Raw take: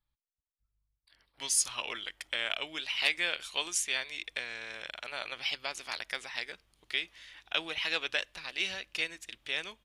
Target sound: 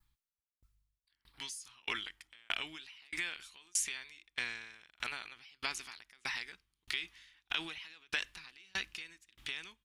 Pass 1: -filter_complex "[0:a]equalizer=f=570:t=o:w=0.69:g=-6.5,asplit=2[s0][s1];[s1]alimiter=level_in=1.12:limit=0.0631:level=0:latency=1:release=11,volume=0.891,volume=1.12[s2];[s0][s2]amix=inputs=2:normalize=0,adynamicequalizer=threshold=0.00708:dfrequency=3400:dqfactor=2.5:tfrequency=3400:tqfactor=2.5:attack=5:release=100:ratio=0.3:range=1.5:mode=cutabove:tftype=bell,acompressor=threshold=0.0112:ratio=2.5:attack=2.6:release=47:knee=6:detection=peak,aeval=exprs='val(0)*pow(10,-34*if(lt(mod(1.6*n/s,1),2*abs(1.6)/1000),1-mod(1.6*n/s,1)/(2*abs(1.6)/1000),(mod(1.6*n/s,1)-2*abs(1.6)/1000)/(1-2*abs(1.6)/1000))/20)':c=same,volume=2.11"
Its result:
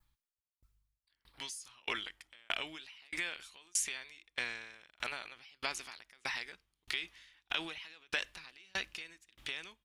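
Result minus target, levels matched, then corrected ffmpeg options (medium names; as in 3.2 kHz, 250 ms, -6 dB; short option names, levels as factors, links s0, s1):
500 Hz band +5.0 dB
-filter_complex "[0:a]equalizer=f=570:t=o:w=0.69:g=-17,asplit=2[s0][s1];[s1]alimiter=level_in=1.12:limit=0.0631:level=0:latency=1:release=11,volume=0.891,volume=1.12[s2];[s0][s2]amix=inputs=2:normalize=0,adynamicequalizer=threshold=0.00708:dfrequency=3400:dqfactor=2.5:tfrequency=3400:tqfactor=2.5:attack=5:release=100:ratio=0.3:range=1.5:mode=cutabove:tftype=bell,acompressor=threshold=0.0112:ratio=2.5:attack=2.6:release=47:knee=6:detection=peak,aeval=exprs='val(0)*pow(10,-34*if(lt(mod(1.6*n/s,1),2*abs(1.6)/1000),1-mod(1.6*n/s,1)/(2*abs(1.6)/1000),(mod(1.6*n/s,1)-2*abs(1.6)/1000)/(1-2*abs(1.6)/1000))/20)':c=same,volume=2.11"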